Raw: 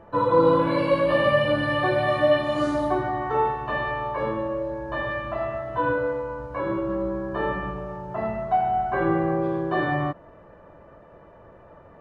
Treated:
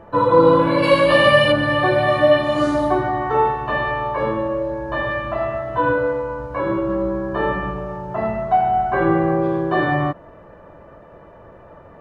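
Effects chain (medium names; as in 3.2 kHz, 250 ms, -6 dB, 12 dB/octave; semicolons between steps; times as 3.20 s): 0.82–1.51 s: treble shelf 2 kHz -> 2.5 kHz +11.5 dB; trim +5.5 dB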